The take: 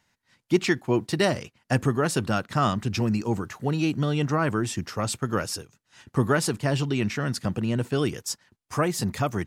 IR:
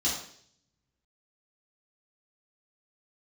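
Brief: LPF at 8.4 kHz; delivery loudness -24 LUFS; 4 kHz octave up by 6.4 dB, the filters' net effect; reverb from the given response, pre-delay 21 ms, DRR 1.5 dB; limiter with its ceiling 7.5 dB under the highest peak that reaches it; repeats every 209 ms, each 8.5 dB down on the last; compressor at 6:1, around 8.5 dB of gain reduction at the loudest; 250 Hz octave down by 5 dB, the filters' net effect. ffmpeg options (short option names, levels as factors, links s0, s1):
-filter_complex "[0:a]lowpass=8400,equalizer=f=250:t=o:g=-7.5,equalizer=f=4000:t=o:g=9,acompressor=threshold=0.0447:ratio=6,alimiter=limit=0.0841:level=0:latency=1,aecho=1:1:209|418|627|836:0.376|0.143|0.0543|0.0206,asplit=2[s0][s1];[1:a]atrim=start_sample=2205,adelay=21[s2];[s1][s2]afir=irnorm=-1:irlink=0,volume=0.335[s3];[s0][s3]amix=inputs=2:normalize=0,volume=1.88"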